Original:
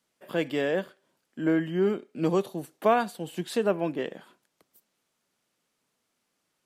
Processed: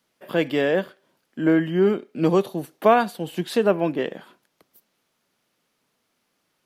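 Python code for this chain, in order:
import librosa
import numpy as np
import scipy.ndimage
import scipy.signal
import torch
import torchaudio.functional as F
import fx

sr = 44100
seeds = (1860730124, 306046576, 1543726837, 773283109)

y = fx.peak_eq(x, sr, hz=7900.0, db=-6.0, octaves=0.64)
y = y * librosa.db_to_amplitude(6.0)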